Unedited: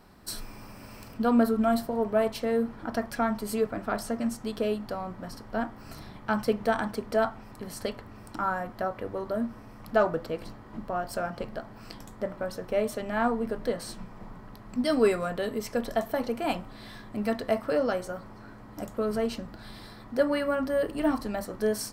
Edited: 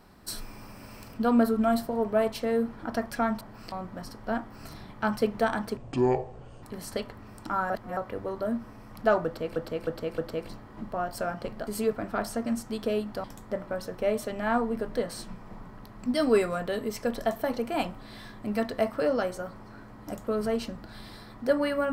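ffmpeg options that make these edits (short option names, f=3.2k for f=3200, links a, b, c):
-filter_complex "[0:a]asplit=12[a][b][c][d][e][f][g][h][i][j][k][l];[a]atrim=end=3.412[m];[b]atrim=start=11.628:end=11.942[n];[c]atrim=start=4.978:end=7.034[o];[d]atrim=start=7.03:end=7.52,asetpts=PTS-STARTPTS,asetrate=25137,aresample=44100[p];[e]atrim=start=7.516:end=8.592[q];[f]atrim=start=8.588:end=8.862,asetpts=PTS-STARTPTS,areverse[r];[g]atrim=start=8.858:end=10.452[s];[h]atrim=start=10.138:end=10.452[t];[i]atrim=start=10.138:end=10.452[u];[j]atrim=start=10.138:end=11.632[v];[k]atrim=start=3.408:end=4.982[w];[l]atrim=start=11.938[x];[m][n]acrossfade=d=0.004:c1=hsin:c2=hsin[y];[y][o]acrossfade=d=0.004:c1=hsin:c2=hsin[z];[z][p]acrossfade=d=0.004:c1=hsin:c2=hsin[aa];[aa][q]acrossfade=d=0.004:c1=hsin:c2=hsin[ab];[ab][r]acrossfade=d=0.004:c1=hsin:c2=hsin[ac];[ac][s]acrossfade=d=0.004:c1=hsin:c2=hsin[ad];[ad][t]acrossfade=d=0.004:c1=hsin:c2=hsin[ae];[ae][u]acrossfade=d=0.004:c1=hsin:c2=hsin[af];[af][v]acrossfade=d=0.004:c1=hsin:c2=hsin[ag];[ag][w]acrossfade=d=0.004:c1=hsin:c2=hsin[ah];[ah][x]acrossfade=d=0.004:c1=hsin:c2=hsin"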